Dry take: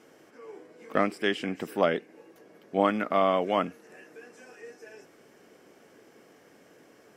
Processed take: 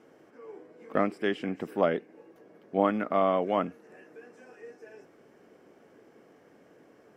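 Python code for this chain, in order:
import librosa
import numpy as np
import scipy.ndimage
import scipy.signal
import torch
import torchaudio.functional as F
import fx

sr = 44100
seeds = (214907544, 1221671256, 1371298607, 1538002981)

y = fx.high_shelf(x, sr, hz=2300.0, db=-11.5)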